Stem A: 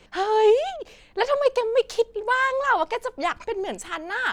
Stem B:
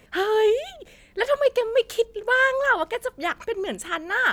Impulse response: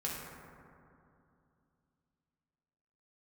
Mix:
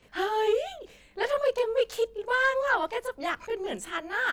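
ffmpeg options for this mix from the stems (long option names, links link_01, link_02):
-filter_complex "[0:a]volume=-9.5dB[link_01];[1:a]adelay=24,volume=-5.5dB[link_02];[link_01][link_02]amix=inputs=2:normalize=0,asoftclip=type=tanh:threshold=-14dB"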